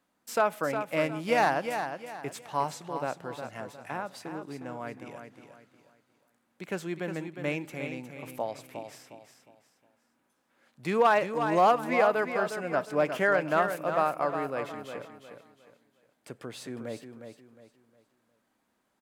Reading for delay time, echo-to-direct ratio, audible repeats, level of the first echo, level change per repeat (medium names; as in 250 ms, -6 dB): 359 ms, -7.5 dB, 3, -8.0 dB, -9.5 dB